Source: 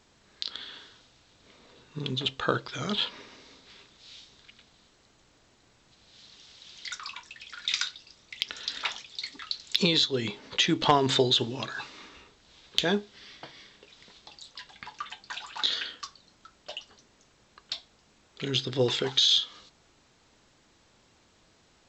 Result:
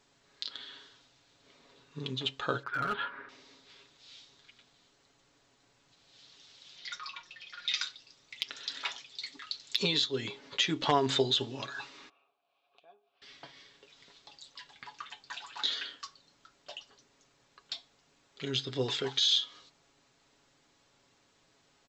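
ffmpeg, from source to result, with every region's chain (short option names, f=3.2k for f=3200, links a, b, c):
-filter_complex "[0:a]asettb=1/sr,asplit=3[a][b][c];[a]atrim=end=2.634[d];[b]atrim=start=2.63:end=3.29,asetpts=PTS-STARTPTS,afade=t=in:d=0.004:c=qsin,afade=t=out:st=0.656:d=0.004:c=qsin,lowpass=f=1.5k:t=q:w=6.9,asoftclip=type=hard:threshold=-21.5dB[e];[c]atrim=start=3.286[f];[d][e]acrossfade=d=0.004:c1=hsin:c2=qsin[g];[g][f]acrossfade=d=0.004:c1=qsin:c2=hsin,asettb=1/sr,asplit=3[h][i][j];[h]atrim=end=6.764[k];[i]atrim=start=6.76:end=7.82,asetpts=PTS-STARTPTS,afade=t=in:d=0.004:c=qsin,afade=t=out:st=1.056:d=0.004:c=qsin,lowpass=f=5.8k:w=0.5412,lowpass=f=5.8k:w=1.3066,aecho=1:1:5.6:0.62,atrim=end_sample=46746[l];[j]atrim=start=7.816[m];[k][l]acrossfade=d=0.004:c1=hsin:c2=qsin[n];[n][m]acrossfade=d=0.004:c1=qsin:c2=hsin,asettb=1/sr,asplit=3[o][p][q];[o]atrim=end=12.094[r];[p]atrim=start=12.09:end=13.22,asetpts=PTS-STARTPTS,afade=t=in:d=0.004:c=qsin,afade=t=out:st=1.126:d=0.004:c=qsin,highshelf=f=6.2k:g=-10,acompressor=threshold=-42dB:ratio=4:attack=3.2:release=140:knee=1:detection=peak,asplit=3[s][t][u];[s]bandpass=f=730:t=q:w=8,volume=0dB[v];[t]bandpass=f=1.09k:t=q:w=8,volume=-6dB[w];[u]bandpass=f=2.44k:t=q:w=8,volume=-9dB[x];[v][w][x]amix=inputs=3:normalize=0[y];[q]atrim=start=13.216[z];[r][y]acrossfade=d=0.004:c1=hsin:c2=qsin[aa];[aa][z]acrossfade=d=0.004:c1=qsin:c2=hsin,lowshelf=f=140:g=-7,aecho=1:1:7.2:0.5,volume=-5.5dB"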